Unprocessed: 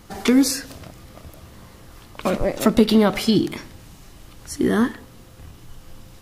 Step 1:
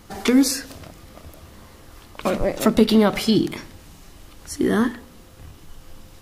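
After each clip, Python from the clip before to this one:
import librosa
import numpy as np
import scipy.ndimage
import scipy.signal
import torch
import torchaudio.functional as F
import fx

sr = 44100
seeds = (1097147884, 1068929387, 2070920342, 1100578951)

y = fx.hum_notches(x, sr, base_hz=60, count=4)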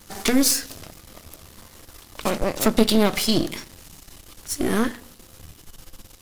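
y = np.where(x < 0.0, 10.0 ** (-12.0 / 20.0) * x, x)
y = fx.high_shelf(y, sr, hz=3300.0, db=10.0)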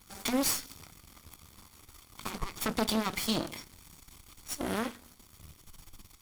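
y = fx.lower_of_two(x, sr, delay_ms=0.89)
y = y * librosa.db_to_amplitude(-6.0)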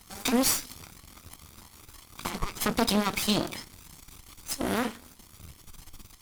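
y = fx.vibrato_shape(x, sr, shape='saw_up', rate_hz=3.1, depth_cents=160.0)
y = y * librosa.db_to_amplitude(4.5)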